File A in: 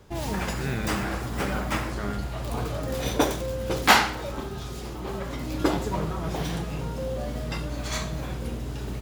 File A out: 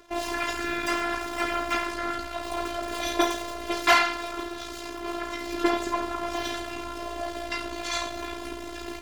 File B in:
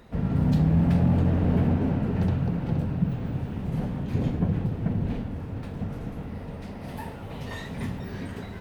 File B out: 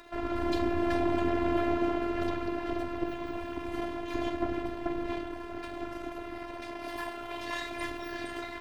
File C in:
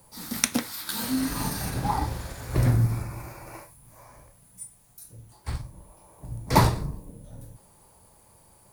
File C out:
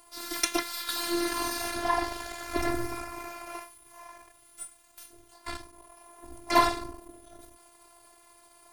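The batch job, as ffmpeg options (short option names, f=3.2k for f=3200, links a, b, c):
-filter_complex "[0:a]aeval=exprs='if(lt(val(0),0),0.251*val(0),val(0))':c=same,afftfilt=real='hypot(re,im)*cos(PI*b)':imag='0':win_size=512:overlap=0.75,asplit=2[a][b];[b]highpass=f=720:p=1,volume=19dB,asoftclip=type=tanh:threshold=-1dB[c];[a][c]amix=inputs=2:normalize=0,lowpass=f=4.6k:p=1,volume=-6dB,asplit=2[d][e];[e]asoftclip=type=hard:threshold=-17dB,volume=-8dB[f];[d][f]amix=inputs=2:normalize=0,volume=-4dB"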